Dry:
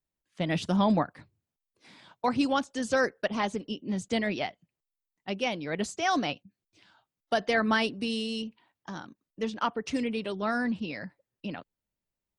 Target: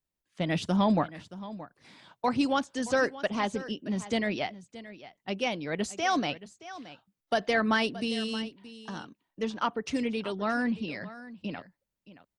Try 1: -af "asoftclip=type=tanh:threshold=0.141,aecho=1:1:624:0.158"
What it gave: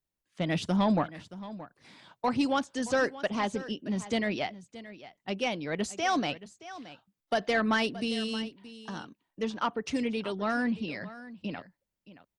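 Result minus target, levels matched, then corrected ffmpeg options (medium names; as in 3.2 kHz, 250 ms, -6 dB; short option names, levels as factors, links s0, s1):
saturation: distortion +12 dB
-af "asoftclip=type=tanh:threshold=0.316,aecho=1:1:624:0.158"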